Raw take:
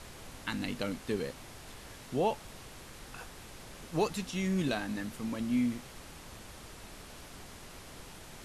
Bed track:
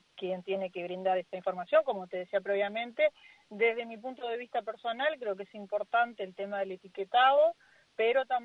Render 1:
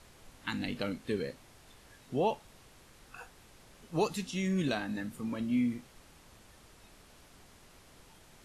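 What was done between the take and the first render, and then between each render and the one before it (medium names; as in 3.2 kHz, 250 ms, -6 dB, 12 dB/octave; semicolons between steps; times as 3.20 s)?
noise print and reduce 9 dB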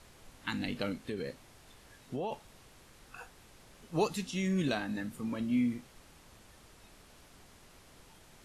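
0.92–2.32 s: compression, threshold -32 dBFS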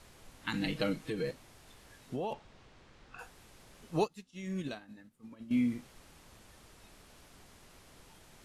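0.53–1.31 s: comb 6.3 ms, depth 91%; 2.33–3.19 s: distance through air 120 m; 4.01–5.51 s: upward expansion 2.5:1, over -42 dBFS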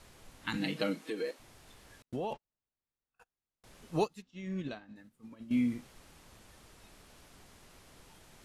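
0.57–1.38 s: high-pass 120 Hz -> 330 Hz 24 dB/octave; 2.02–3.64 s: gate -45 dBFS, range -40 dB; 4.22–4.96 s: distance through air 120 m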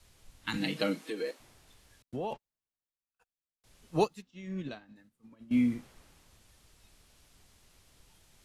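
three bands expanded up and down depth 40%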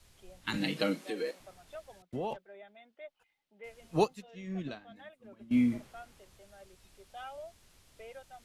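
add bed track -21.5 dB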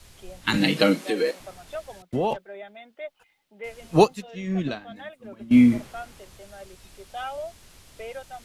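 trim +11.5 dB; peak limiter -3 dBFS, peak gain reduction 1.5 dB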